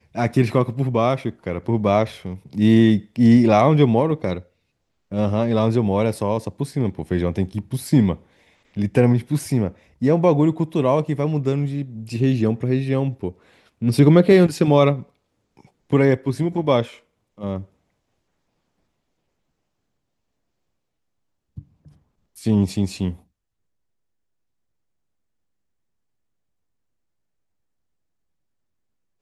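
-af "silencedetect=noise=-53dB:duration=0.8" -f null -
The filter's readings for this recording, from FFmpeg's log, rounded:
silence_start: 17.73
silence_end: 21.57 | silence_duration: 3.84
silence_start: 23.24
silence_end: 29.22 | silence_duration: 5.97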